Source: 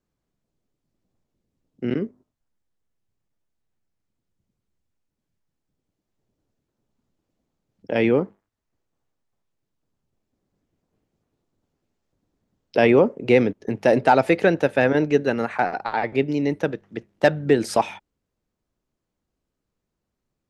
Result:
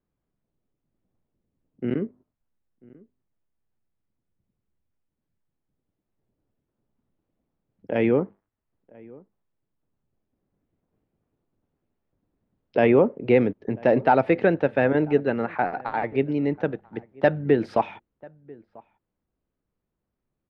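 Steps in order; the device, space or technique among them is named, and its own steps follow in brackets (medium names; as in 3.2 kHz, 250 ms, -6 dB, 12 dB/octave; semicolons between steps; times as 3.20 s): shout across a valley (distance through air 360 m; echo from a far wall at 170 m, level -24 dB); trim -1 dB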